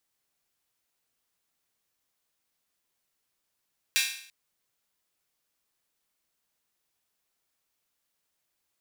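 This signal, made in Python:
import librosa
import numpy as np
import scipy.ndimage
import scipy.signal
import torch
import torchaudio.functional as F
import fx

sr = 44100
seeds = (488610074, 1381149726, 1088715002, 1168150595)

y = fx.drum_hat_open(sr, length_s=0.34, from_hz=2300.0, decay_s=0.59)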